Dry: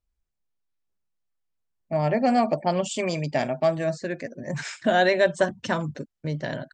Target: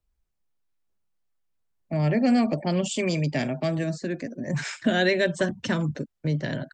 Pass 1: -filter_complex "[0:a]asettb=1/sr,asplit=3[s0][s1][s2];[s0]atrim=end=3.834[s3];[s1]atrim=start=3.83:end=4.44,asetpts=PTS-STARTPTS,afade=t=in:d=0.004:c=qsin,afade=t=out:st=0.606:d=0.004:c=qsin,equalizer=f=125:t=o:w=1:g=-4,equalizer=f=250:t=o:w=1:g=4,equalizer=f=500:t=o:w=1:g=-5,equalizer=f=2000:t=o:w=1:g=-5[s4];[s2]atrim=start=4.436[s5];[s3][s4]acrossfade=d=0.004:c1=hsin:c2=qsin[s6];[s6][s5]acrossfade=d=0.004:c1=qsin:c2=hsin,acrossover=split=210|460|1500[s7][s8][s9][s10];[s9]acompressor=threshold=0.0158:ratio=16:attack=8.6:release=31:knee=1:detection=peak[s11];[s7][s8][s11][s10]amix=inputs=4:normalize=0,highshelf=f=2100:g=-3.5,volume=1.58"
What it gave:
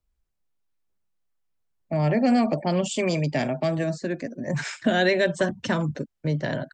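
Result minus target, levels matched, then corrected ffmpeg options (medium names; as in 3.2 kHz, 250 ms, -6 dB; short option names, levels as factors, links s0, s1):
compression: peak gain reduction -10.5 dB
-filter_complex "[0:a]asettb=1/sr,asplit=3[s0][s1][s2];[s0]atrim=end=3.834[s3];[s1]atrim=start=3.83:end=4.44,asetpts=PTS-STARTPTS,afade=t=in:d=0.004:c=qsin,afade=t=out:st=0.606:d=0.004:c=qsin,equalizer=f=125:t=o:w=1:g=-4,equalizer=f=250:t=o:w=1:g=4,equalizer=f=500:t=o:w=1:g=-5,equalizer=f=2000:t=o:w=1:g=-5[s4];[s2]atrim=start=4.436[s5];[s3][s4]acrossfade=d=0.004:c1=hsin:c2=qsin[s6];[s6][s5]acrossfade=d=0.004:c1=qsin:c2=hsin,acrossover=split=210|460|1500[s7][s8][s9][s10];[s9]acompressor=threshold=0.00447:ratio=16:attack=8.6:release=31:knee=1:detection=peak[s11];[s7][s8][s11][s10]amix=inputs=4:normalize=0,highshelf=f=2100:g=-3.5,volume=1.58"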